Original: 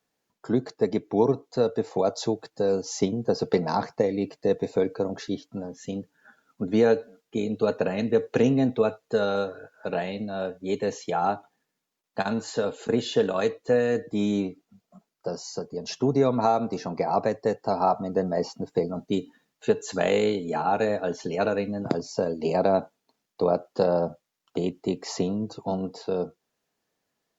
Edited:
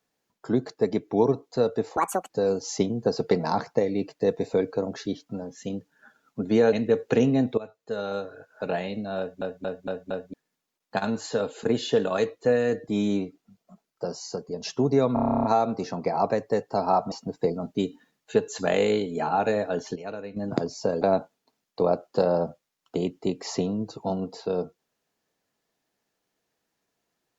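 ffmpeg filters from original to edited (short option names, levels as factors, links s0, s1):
-filter_complex "[0:a]asplit=24[s0][s1][s2][s3][s4][s5][s6][s7][s8][s9][s10][s11][s12][s13][s14][s15][s16][s17][s18][s19][s20][s21][s22][s23];[s0]atrim=end=1.974[s24];[s1]atrim=start=1.97:end=2.52,asetpts=PTS-STARTPTS,asetrate=74529,aresample=44100,atrim=end_sample=14352,asetpts=PTS-STARTPTS[s25];[s2]atrim=start=2.516:end=6.952[s26];[s3]atrim=start=7.958:end=8.81,asetpts=PTS-STARTPTS,afade=t=out:st=0.848:d=0.004:c=hsin:silence=0.141254[s27];[s4]atrim=start=8.81:end=10.652,asetpts=PTS-STARTPTS,afade=t=in:d=1.05:silence=0.141254[s28];[s5]atrim=start=10.418:end=10.652[s29];[s6]atrim=start=10.418:end=10.652[s30];[s7]atrim=start=10.418:end=10.652[s31];[s8]atrim=start=10.418:end=10.652[s32];[s9]atrim=start=11.568:end=16.402[s33];[s10]atrim=start=16.368:end=16.402[s34];[s11]atrim=start=16.368:end=16.402[s35];[s12]atrim=start=16.368:end=16.402[s36];[s13]atrim=start=16.368:end=16.402[s37];[s14]atrim=start=16.368:end=16.402[s38];[s15]atrim=start=16.368:end=16.402[s39];[s16]atrim=start=16.368:end=16.402[s40];[s17]atrim=start=16.368:end=16.402[s41];[s18]atrim=start=16.368:end=16.402[s42];[s19]atrim=start=16.368:end=18.052[s43];[s20]atrim=start=18.448:end=21.292[s44];[s21]atrim=start=21.288:end=21.702,asetpts=PTS-STARTPTS,volume=0.282[s45];[s22]atrim=start=21.698:end=22.352[s46];[s23]atrim=start=22.628[s47];[s24][s25]acrossfade=d=0.004:c1=hsin:c2=hsin[s48];[s48][s26]acrossfade=d=0.004:c1=hsin:c2=hsin[s49];[s27][s28]concat=n=2:v=0:a=1[s50];[s49][s50]acrossfade=d=0.004:c1=hsin:c2=hsin[s51];[s51][s29]acrossfade=d=0.004:c1=hsin:c2=hsin[s52];[s52][s30]acrossfade=d=0.004:c1=hsin:c2=hsin[s53];[s53][s31]acrossfade=d=0.004:c1=hsin:c2=hsin[s54];[s54][s32]acrossfade=d=0.004:c1=hsin:c2=hsin[s55];[s55][s33]acrossfade=d=0.004:c1=hsin:c2=hsin[s56];[s56][s34]acrossfade=d=0.004:c1=hsin:c2=hsin[s57];[s57][s35]acrossfade=d=0.004:c1=hsin:c2=hsin[s58];[s58][s36]acrossfade=d=0.004:c1=hsin:c2=hsin[s59];[s59][s37]acrossfade=d=0.004:c1=hsin:c2=hsin[s60];[s60][s38]acrossfade=d=0.004:c1=hsin:c2=hsin[s61];[s61][s39]acrossfade=d=0.004:c1=hsin:c2=hsin[s62];[s62][s40]acrossfade=d=0.004:c1=hsin:c2=hsin[s63];[s63][s41]acrossfade=d=0.004:c1=hsin:c2=hsin[s64];[s64][s42]acrossfade=d=0.004:c1=hsin:c2=hsin[s65];[s65][s43]acrossfade=d=0.004:c1=hsin:c2=hsin[s66];[s66][s44]acrossfade=d=0.004:c1=hsin:c2=hsin[s67];[s67][s45]acrossfade=d=0.004:c1=hsin:c2=hsin[s68];[s68][s46]acrossfade=d=0.004:c1=hsin:c2=hsin[s69];[s69][s47]acrossfade=d=0.004:c1=hsin:c2=hsin"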